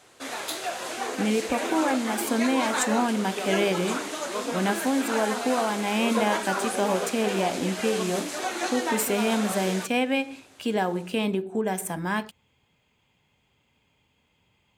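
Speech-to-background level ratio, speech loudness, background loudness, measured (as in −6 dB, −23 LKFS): 3.5 dB, −27.0 LKFS, −30.5 LKFS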